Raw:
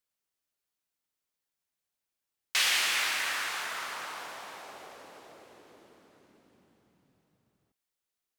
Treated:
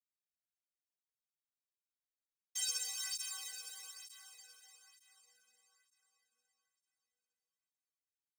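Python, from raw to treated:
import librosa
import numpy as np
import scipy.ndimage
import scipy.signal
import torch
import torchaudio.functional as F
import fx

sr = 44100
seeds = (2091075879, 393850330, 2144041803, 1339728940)

p1 = fx.noise_vocoder(x, sr, seeds[0], bands=3)
p2 = fx.stiff_resonator(p1, sr, f0_hz=230.0, decay_s=0.56, stiffness=0.03)
p3 = np.where(np.abs(p2) >= 10.0 ** (-47.0 / 20.0), p2, 0.0)
p4 = p2 + (p3 * librosa.db_to_amplitude(-5.0))
p5 = np.diff(p4, prepend=0.0)
p6 = p5 + fx.echo_thinned(p5, sr, ms=425, feedback_pct=47, hz=310.0, wet_db=-8.0, dry=0)
p7 = fx.flanger_cancel(p6, sr, hz=1.1, depth_ms=1.1)
y = p7 * librosa.db_to_amplitude(6.0)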